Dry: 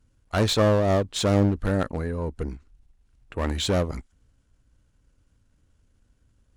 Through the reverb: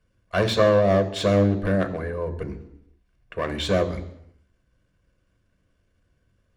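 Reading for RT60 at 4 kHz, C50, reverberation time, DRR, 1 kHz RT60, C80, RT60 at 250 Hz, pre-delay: 0.85 s, 14.0 dB, 0.80 s, 8.0 dB, 0.80 s, 16.0 dB, 0.80 s, 3 ms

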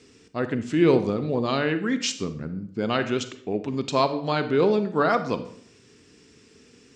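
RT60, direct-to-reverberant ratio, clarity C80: 0.60 s, 10.0 dB, 15.0 dB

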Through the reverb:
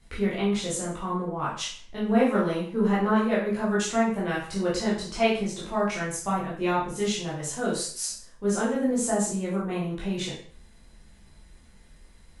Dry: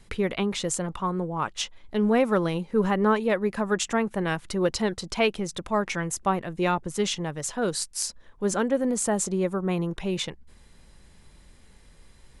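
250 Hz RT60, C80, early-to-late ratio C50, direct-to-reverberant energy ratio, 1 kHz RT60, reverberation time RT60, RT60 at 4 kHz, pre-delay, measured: 0.40 s, 8.5 dB, 4.0 dB, −7.0 dB, 0.45 s, 0.45 s, 0.45 s, 6 ms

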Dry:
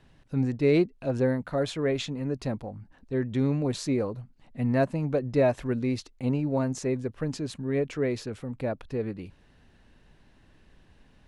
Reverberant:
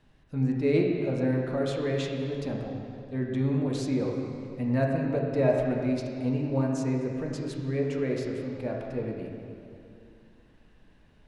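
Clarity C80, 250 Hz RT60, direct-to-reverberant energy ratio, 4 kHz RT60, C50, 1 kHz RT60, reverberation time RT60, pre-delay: 2.5 dB, 2.8 s, −1.0 dB, 2.1 s, 1.5 dB, 2.5 s, 2.6 s, 3 ms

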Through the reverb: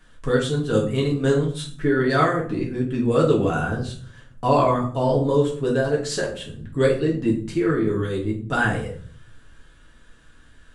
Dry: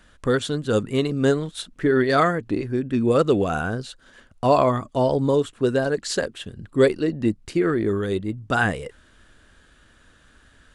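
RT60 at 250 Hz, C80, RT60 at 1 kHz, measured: 0.80 s, 12.5 dB, 0.45 s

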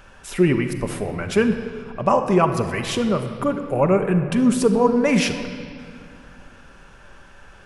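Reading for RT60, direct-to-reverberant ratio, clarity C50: 2.3 s, 5.5 dB, 8.0 dB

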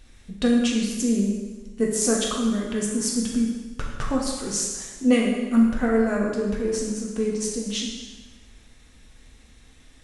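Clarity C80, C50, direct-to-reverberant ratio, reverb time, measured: 4.0 dB, 2.0 dB, −2.0 dB, 1.2 s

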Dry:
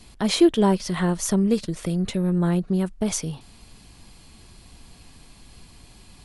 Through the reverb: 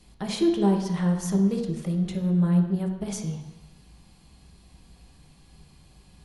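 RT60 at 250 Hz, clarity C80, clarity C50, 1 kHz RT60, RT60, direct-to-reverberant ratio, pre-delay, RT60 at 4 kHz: 0.95 s, 8.0 dB, 6.0 dB, 1.1 s, 1.0 s, 1.0 dB, 3 ms, 1.1 s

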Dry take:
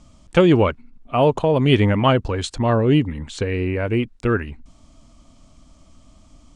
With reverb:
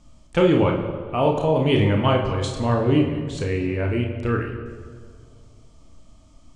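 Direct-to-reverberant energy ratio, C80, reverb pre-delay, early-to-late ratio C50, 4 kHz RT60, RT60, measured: 0.5 dB, 8.0 dB, 30 ms, 5.5 dB, 1.2 s, 2.0 s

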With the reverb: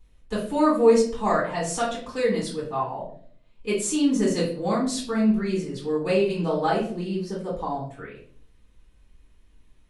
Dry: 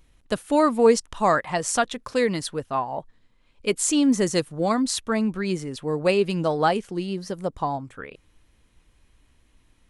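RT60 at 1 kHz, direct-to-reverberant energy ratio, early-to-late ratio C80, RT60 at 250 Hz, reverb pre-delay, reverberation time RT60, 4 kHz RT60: 0.45 s, −7.5 dB, 9.5 dB, 0.80 s, 4 ms, 0.55 s, 0.40 s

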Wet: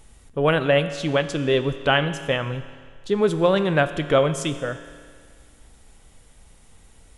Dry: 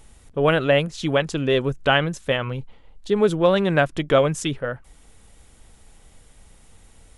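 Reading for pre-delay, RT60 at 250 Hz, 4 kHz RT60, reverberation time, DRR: 8 ms, 1.9 s, 1.8 s, 1.9 s, 10.0 dB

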